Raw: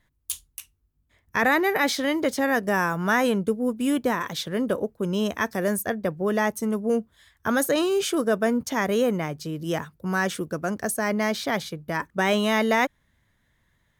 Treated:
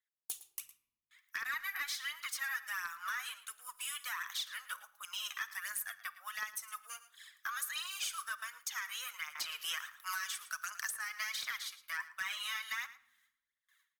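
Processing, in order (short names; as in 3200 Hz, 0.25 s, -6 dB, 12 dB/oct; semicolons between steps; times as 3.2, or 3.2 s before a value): gate with hold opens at -57 dBFS; elliptic high-pass 1200 Hz, stop band 70 dB; high shelf 7800 Hz +6 dB; compressor 4:1, threshold -37 dBFS, peak gain reduction 14.5 dB; phaser 1.4 Hz, delay 2.7 ms, feedback 57%; hard clip -28.5 dBFS, distortion -18 dB; echo 0.111 s -16.5 dB; shoebox room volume 3100 m³, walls furnished, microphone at 0.6 m; 9.35–11.58 three-band squash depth 100%; gain -2 dB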